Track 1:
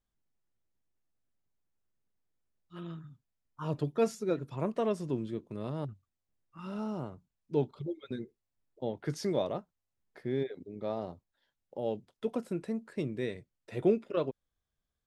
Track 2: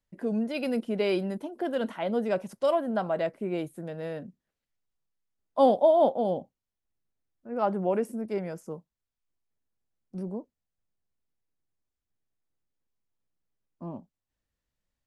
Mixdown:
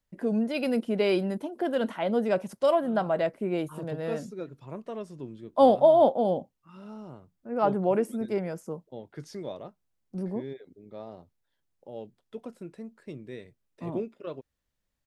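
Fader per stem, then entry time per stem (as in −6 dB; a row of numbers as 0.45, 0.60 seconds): −6.5, +2.0 decibels; 0.10, 0.00 seconds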